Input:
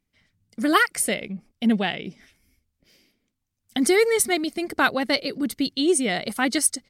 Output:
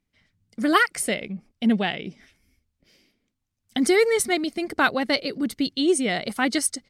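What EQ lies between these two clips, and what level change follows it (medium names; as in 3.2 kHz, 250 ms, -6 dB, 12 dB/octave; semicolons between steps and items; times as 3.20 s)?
treble shelf 11 kHz -10 dB; 0.0 dB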